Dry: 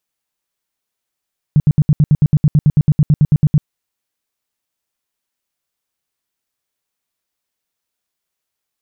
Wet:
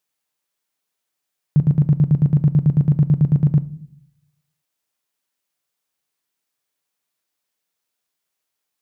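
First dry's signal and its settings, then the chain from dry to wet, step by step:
tone bursts 150 Hz, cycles 6, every 0.11 s, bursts 19, -6 dBFS
high-pass 150 Hz 6 dB/octave; simulated room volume 710 m³, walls furnished, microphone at 0.45 m

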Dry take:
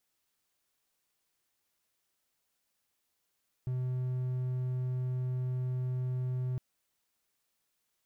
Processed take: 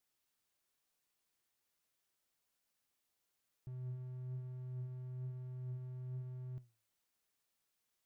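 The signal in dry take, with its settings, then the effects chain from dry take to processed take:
tone triangle 127 Hz -28.5 dBFS 2.91 s
peak limiter -36.5 dBFS; flange 1.1 Hz, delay 6.4 ms, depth 2.9 ms, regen +83%

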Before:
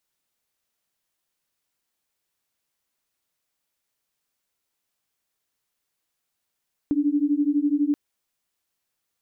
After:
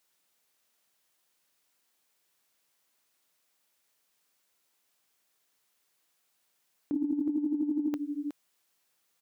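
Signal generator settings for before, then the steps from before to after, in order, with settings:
beating tones 285 Hz, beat 12 Hz, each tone -22 dBFS 1.03 s
high-pass 230 Hz 6 dB/octave; delay 367 ms -16 dB; compressor with a negative ratio -28 dBFS, ratio -0.5

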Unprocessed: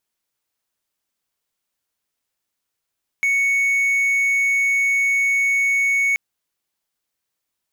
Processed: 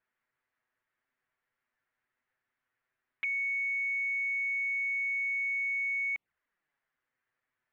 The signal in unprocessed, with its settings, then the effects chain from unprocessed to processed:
tone triangle 2.22 kHz -13.5 dBFS 2.93 s
peak limiter -24.5 dBFS; touch-sensitive flanger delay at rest 8.1 ms, full sweep at -31.5 dBFS; resonant low-pass 1.8 kHz, resonance Q 3

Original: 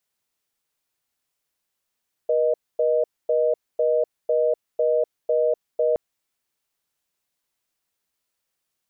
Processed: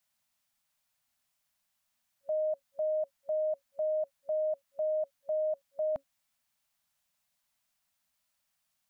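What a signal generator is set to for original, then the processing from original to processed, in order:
call progress tone reorder tone, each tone -20 dBFS 3.67 s
FFT band-reject 270–550 Hz; peak limiter -27 dBFS

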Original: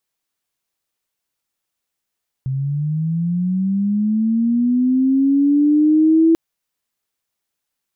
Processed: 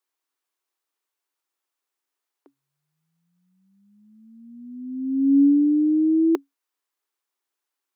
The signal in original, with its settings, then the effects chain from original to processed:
sweep linear 130 Hz -> 330 Hz -18.5 dBFS -> -9 dBFS 3.89 s
rippled Chebyshev high-pass 270 Hz, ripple 6 dB

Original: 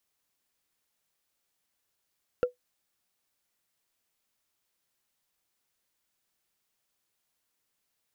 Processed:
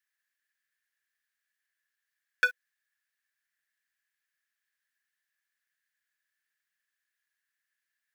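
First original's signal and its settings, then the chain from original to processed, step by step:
wood hit, lowest mode 495 Hz, decay 0.13 s, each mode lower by 10.5 dB, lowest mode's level -17 dB
waveshaping leveller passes 5; resonant high-pass 1.7 kHz, resonance Q 13

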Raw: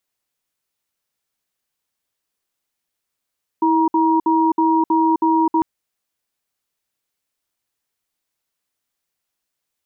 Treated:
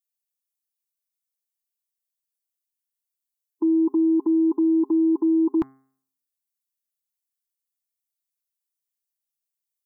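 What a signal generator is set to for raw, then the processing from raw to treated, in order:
cadence 324 Hz, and 949 Hz, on 0.26 s, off 0.06 s, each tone -15.5 dBFS 2.00 s
expander on every frequency bin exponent 1.5; Butterworth band-stop 940 Hz, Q 4.9; de-hum 133.5 Hz, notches 16

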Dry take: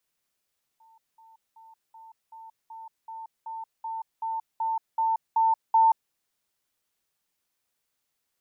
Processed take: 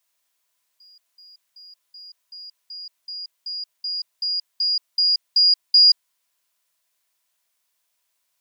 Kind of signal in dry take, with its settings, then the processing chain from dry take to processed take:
level ladder 897 Hz -54.5 dBFS, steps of 3 dB, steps 14, 0.18 s 0.20 s
split-band scrambler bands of 4 kHz; tilt shelf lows -7 dB, about 760 Hz; small resonant body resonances 650/1000 Hz, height 9 dB, ringing for 45 ms

